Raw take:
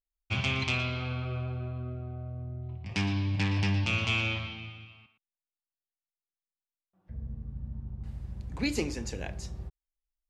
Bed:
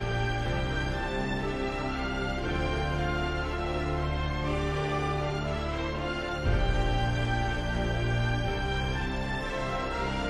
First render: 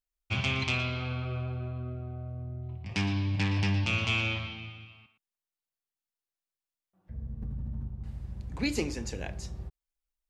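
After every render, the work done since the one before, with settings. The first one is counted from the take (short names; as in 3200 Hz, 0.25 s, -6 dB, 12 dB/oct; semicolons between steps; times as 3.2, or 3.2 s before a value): 7.42–7.88 fast leveller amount 100%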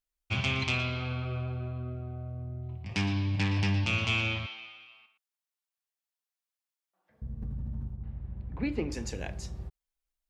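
4.46–7.22 HPF 650 Hz; 7.96–8.92 air absorption 490 m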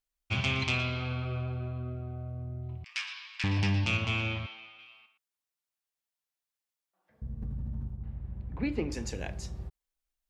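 2.84–3.44 Chebyshev high-pass 1200 Hz, order 4; 3.97–4.79 high shelf 2600 Hz -7.5 dB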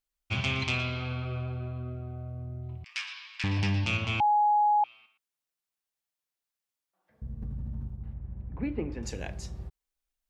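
4.2–4.84 bleep 835 Hz -20 dBFS; 8.13–9.03 air absorption 450 m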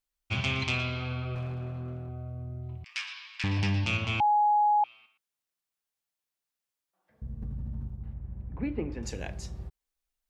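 1.35–2.09 minimum comb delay 8.2 ms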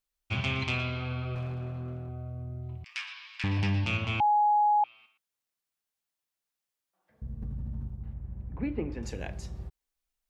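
dynamic EQ 6500 Hz, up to -6 dB, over -51 dBFS, Q 0.74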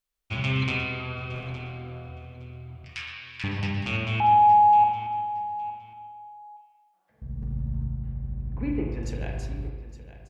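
feedback echo 0.864 s, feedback 21%, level -15 dB; spring tank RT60 1.2 s, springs 38/45 ms, chirp 30 ms, DRR 1 dB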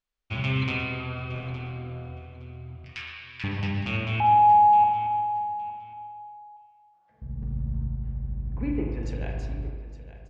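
air absorption 94 m; darkening echo 0.232 s, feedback 53%, level -16 dB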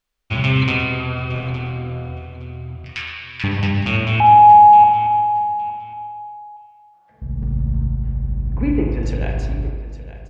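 gain +9.5 dB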